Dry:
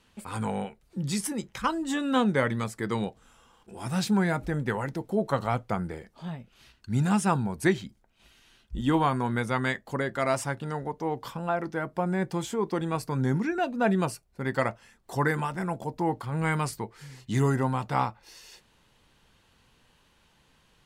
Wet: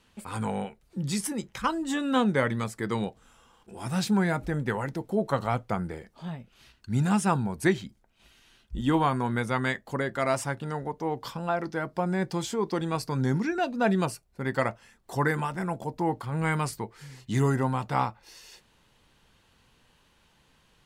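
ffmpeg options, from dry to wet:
-filter_complex "[0:a]asettb=1/sr,asplit=3[a][b][c];[a]atrim=end=11.244[d];[b]atrim=start=11.24:end=14.06,asetpts=PTS-STARTPTS,afade=t=in:d=0.004:c=qsin,afade=t=out:st=2.816:d=0.004:c=qsin,equalizer=f=4.8k:w=1.6:g=6.5[e];[c]atrim=start=14.056[f];[d][e]acrossfade=d=0.004:c1=hsin:c2=qsin[g];[g][f]acrossfade=d=0.004:c1=qsin:c2=hsin"

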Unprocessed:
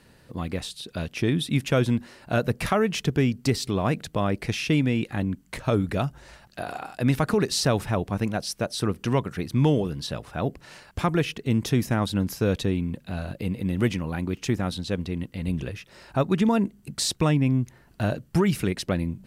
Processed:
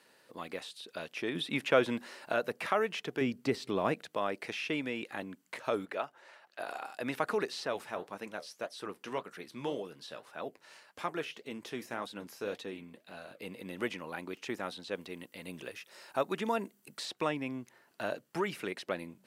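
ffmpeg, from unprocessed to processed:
-filter_complex "[0:a]asettb=1/sr,asplit=3[a][b][c];[a]atrim=end=1.354[d];[b]atrim=start=1.35:end=2.33,asetpts=PTS-STARTPTS,afade=t=in:d=0.004:c=qsin,afade=t=out:st=0.976:d=0.004:c=qsin,acontrast=35[e];[c]atrim=start=2.326[f];[d][e]acrossfade=d=0.004:c1=hsin:c2=qsin[g];[g][f]acrossfade=d=0.004:c1=qsin:c2=hsin,asettb=1/sr,asplit=3[h][i][j];[h]atrim=end=3.214[k];[i]atrim=start=3.21:end=3.94,asetpts=PTS-STARTPTS,afade=t=in:d=0.004:c=qsin,afade=t=out:st=0.726:d=0.004:c=qsin,lowshelf=f=340:g=10.5[l];[j]atrim=start=3.936[m];[k][l]acrossfade=d=0.004:c1=hsin:c2=qsin[n];[n][m]acrossfade=d=0.004:c1=qsin:c2=hsin,asettb=1/sr,asplit=3[o][p][q];[o]atrim=end=5.854[r];[p]atrim=start=5.85:end=6.6,asetpts=PTS-STARTPTS,afade=t=in:d=0.004:c=qsin,afade=t=out:st=0.746:d=0.004:c=qsin,bass=f=250:g=-14,treble=f=4k:g=-11[s];[q]atrim=start=6.596[t];[r][s]acrossfade=d=0.004:c1=hsin:c2=qsin[u];[u][t]acrossfade=d=0.004:c1=qsin:c2=hsin,asettb=1/sr,asplit=3[v][w][x];[v]atrim=end=7.644[y];[w]atrim=start=7.64:end=13.42,asetpts=PTS-STARTPTS,afade=t=in:d=0.004:c=qsin,afade=t=out:st=5.776:d=0.004:c=qsin,flanger=delay=3.8:depth=9.6:regen=-61:speed=1.8:shape=sinusoidal[z];[x]atrim=start=13.416[aa];[y][z]acrossfade=d=0.004:c1=hsin:c2=qsin[ab];[ab][aa]acrossfade=d=0.004:c1=qsin:c2=hsin,asettb=1/sr,asplit=3[ac][ad][ae];[ac]atrim=end=14.954[af];[ad]atrim=start=14.95:end=17.06,asetpts=PTS-STARTPTS,afade=t=in:d=0.004:c=qsin,afade=t=out:st=2.106:d=0.004:c=qsin,highshelf=f=7.9k:g=9.5[ag];[ae]atrim=start=17.056[ah];[af][ag]acrossfade=d=0.004:c1=hsin:c2=qsin[ai];[ai][ah]acrossfade=d=0.004:c1=qsin:c2=hsin,highpass=450,bandreject=f=730:w=24,acrossover=split=3300[aj][ak];[ak]acompressor=threshold=-45dB:ratio=4:attack=1:release=60[al];[aj][al]amix=inputs=2:normalize=0,volume=-4.5dB"

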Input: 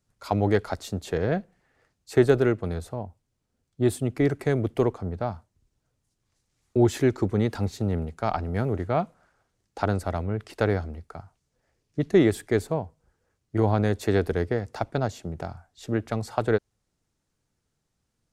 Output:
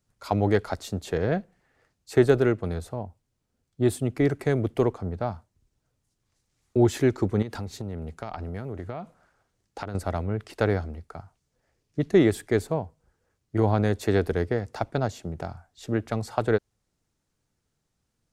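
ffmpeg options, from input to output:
-filter_complex "[0:a]asettb=1/sr,asplit=3[a][b][c];[a]atrim=end=7.424[d];[b]atrim=start=7.42:end=9.95,asetpts=PTS-STARTPTS,afade=t=in:d=0.004:c=qsin,afade=t=out:st=2.526:d=0.004:c=qsin,acompressor=threshold=-29dB:ratio=10:attack=3.2:release=140:knee=1:detection=peak[e];[c]atrim=start=9.946[f];[d][e]acrossfade=d=0.004:c1=hsin:c2=qsin[g];[g][f]acrossfade=d=0.004:c1=qsin:c2=hsin"

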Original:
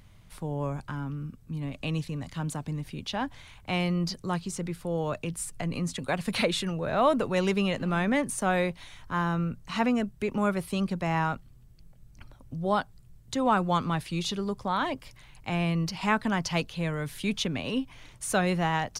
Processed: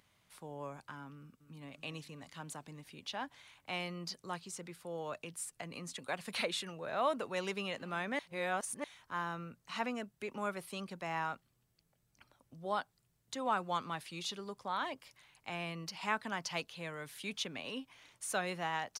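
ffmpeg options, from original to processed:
-filter_complex "[0:a]asplit=2[a][b];[b]afade=t=in:st=1.12:d=0.01,afade=t=out:st=1.68:d=0.01,aecho=0:1:280|560|840|1120|1400|1680|1960|2240:0.251189|0.163273|0.106127|0.0689827|0.0448387|0.0291452|0.0189444|0.0123138[c];[a][c]amix=inputs=2:normalize=0,asplit=3[d][e][f];[d]atrim=end=8.192[g];[e]atrim=start=8.188:end=8.842,asetpts=PTS-STARTPTS,areverse[h];[f]atrim=start=8.838[i];[g][h]acrossfade=d=0.004:c1=hsin:c2=hsin[j];[j][i]acrossfade=d=0.004:c1=hsin:c2=hsin,highpass=f=600:p=1,volume=-7dB"

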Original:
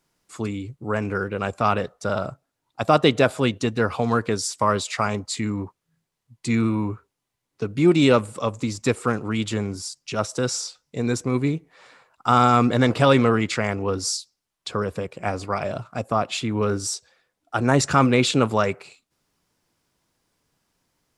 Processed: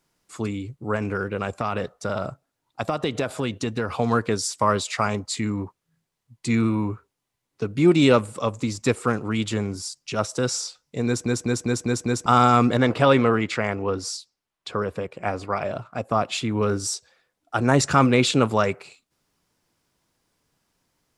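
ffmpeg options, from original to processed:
-filter_complex "[0:a]asettb=1/sr,asplit=3[a][b][c];[a]atrim=end=0.954[d];[b]atrim=start=0.95:end=3.92,asetpts=PTS-STARTPTS,afade=t=in:d=0.004:c=qsin,afade=t=out:st=2.966:d=0.004:c=qsin,acompressor=threshold=-20dB:ratio=6:attack=3.2:release=140:knee=1:detection=peak[e];[c]atrim=start=3.916[f];[d][e]acrossfade=d=0.004:c1=hsin:c2=qsin[g];[g][f]acrossfade=d=0.004:c1=qsin:c2=hsin,asettb=1/sr,asplit=3[h][i][j];[h]atrim=end=12.774[k];[i]atrim=start=12.77:end=16.11,asetpts=PTS-STARTPTS,afade=t=in:d=0.004:c=qsin,afade=t=out:st=3.336:d=0.004:c=qsin,bass=f=250:g=-3,treble=f=4k:g=-7[l];[j]atrim=start=16.106[m];[k][l]acrossfade=d=0.004:c1=hsin:c2=qsin[n];[n][m]acrossfade=d=0.004:c1=qsin:c2=hsin,asplit=7[o][p][q][r][s][t][u];[o]atrim=end=11.262[v];[p]atrim=start=11.058:end=11.262[w];[q]atrim=start=11.058:end=11.262[x];[r]atrim=start=11.058:end=11.262[y];[s]atrim=start=11.058:end=11.262[z];[t]atrim=start=11.058:end=11.262[aa];[u]atrim=start=12.258[ab];[v][w]acrossfade=d=0.004:c1=hsin:c2=hsin[ac];[ac][x]acrossfade=d=0.004:c1=hsin:c2=hsin[ad];[ad][y]acrossfade=d=0.004:c1=hsin:c2=hsin[ae];[ae][z]acrossfade=d=0.004:c1=hsin:c2=hsin[af];[af][aa]acrossfade=d=0.004:c1=hsin:c2=hsin[ag];[ag][ab]acrossfade=d=0.004:c1=hsin:c2=hsin"

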